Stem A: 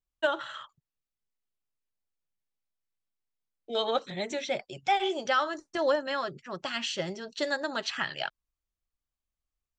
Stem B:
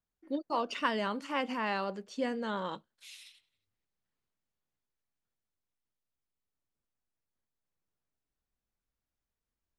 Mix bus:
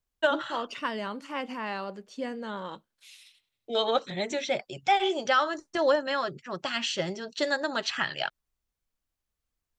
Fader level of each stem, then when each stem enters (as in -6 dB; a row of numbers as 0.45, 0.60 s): +2.5, -1.0 dB; 0.00, 0.00 s